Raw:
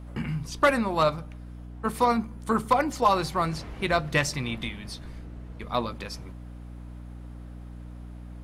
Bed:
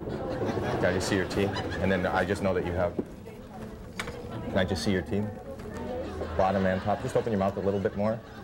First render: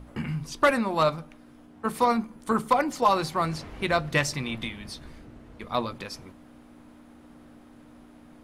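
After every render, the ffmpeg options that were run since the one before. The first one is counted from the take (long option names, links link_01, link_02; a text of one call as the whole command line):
ffmpeg -i in.wav -af "bandreject=frequency=60:width_type=h:width=6,bandreject=frequency=120:width_type=h:width=6,bandreject=frequency=180:width_type=h:width=6" out.wav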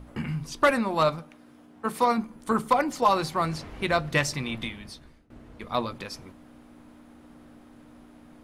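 ffmpeg -i in.wav -filter_complex "[0:a]asettb=1/sr,asplit=3[link_01][link_02][link_03];[link_01]atrim=end=1.194[link_04];[link_02]atrim=start=1.19:end=2.18,asetpts=PTS-STARTPTS,afade=type=in:duration=0.004:curve=qsin,afade=type=out:start_time=0.986:duration=0.004:curve=qsin,highpass=frequency=150:poles=1[link_05];[link_03]atrim=start=2.176[link_06];[link_04][link_05]acrossfade=duration=0.004:curve1=hsin:curve2=qsin[link_07];[link_07][link_06]acrossfade=duration=0.004:curve1=qsin:curve2=hsin,asplit=2[link_08][link_09];[link_08]atrim=end=5.3,asetpts=PTS-STARTPTS,afade=type=out:start_time=4.68:duration=0.62:silence=0.0794328[link_10];[link_09]atrim=start=5.3,asetpts=PTS-STARTPTS,afade=type=in:duration=0.004:curve=hsin:silence=0.0794328[link_11];[link_10][link_11]concat=n=2:v=0:a=1" out.wav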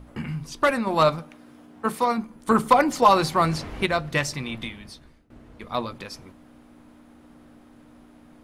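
ffmpeg -i in.wav -filter_complex "[0:a]asettb=1/sr,asplit=3[link_01][link_02][link_03];[link_01]atrim=end=2.484[link_04];[link_02]atrim=start=2.48:end=3.86,asetpts=PTS-STARTPTS,afade=type=in:duration=0.004:curve=qsin,afade=type=out:start_time=1.376:duration=0.004:curve=qsin,acontrast=45[link_05];[link_03]atrim=start=3.856[link_06];[link_04][link_05]acrossfade=duration=0.004:curve1=hsin:curve2=qsin[link_07];[link_07][link_06]acrossfade=duration=0.004:curve1=qsin:curve2=hsin,asplit=3[link_08][link_09][link_10];[link_08]atrim=end=0.872[link_11];[link_09]atrim=start=0.868:end=1.952,asetpts=PTS-STARTPTS,volume=4dB[link_12];[link_10]atrim=start=1.948[link_13];[link_11][link_12]acrossfade=duration=0.004:curve1=hsin:curve2=hsin[link_14];[link_14][link_13]acrossfade=duration=0.004:curve1=hsin:curve2=hsin" out.wav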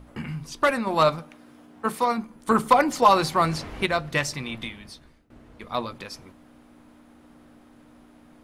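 ffmpeg -i in.wav -af "lowshelf=frequency=390:gain=-2.5" out.wav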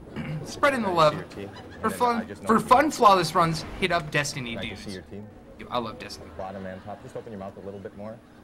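ffmpeg -i in.wav -i bed.wav -filter_complex "[1:a]volume=-10.5dB[link_01];[0:a][link_01]amix=inputs=2:normalize=0" out.wav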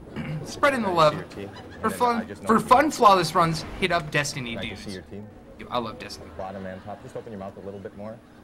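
ffmpeg -i in.wav -af "volume=1dB" out.wav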